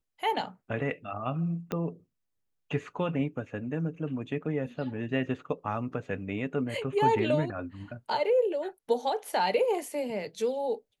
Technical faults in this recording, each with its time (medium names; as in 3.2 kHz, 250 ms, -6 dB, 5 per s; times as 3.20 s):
1.72 s: pop -18 dBFS